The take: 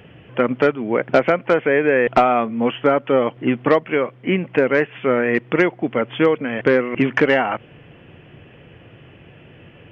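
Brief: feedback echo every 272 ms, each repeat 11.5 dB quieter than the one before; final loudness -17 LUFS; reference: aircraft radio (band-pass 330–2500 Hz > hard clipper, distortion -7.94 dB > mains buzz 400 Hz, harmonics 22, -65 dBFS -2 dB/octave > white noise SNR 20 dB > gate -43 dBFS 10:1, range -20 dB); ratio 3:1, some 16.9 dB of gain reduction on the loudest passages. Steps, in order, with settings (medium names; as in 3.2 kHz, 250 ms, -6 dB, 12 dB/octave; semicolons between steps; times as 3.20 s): compression 3:1, threshold -34 dBFS; band-pass 330–2500 Hz; feedback delay 272 ms, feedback 27%, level -11.5 dB; hard clipper -33 dBFS; mains buzz 400 Hz, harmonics 22, -65 dBFS -2 dB/octave; white noise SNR 20 dB; gate -43 dBFS 10:1, range -20 dB; trim +21.5 dB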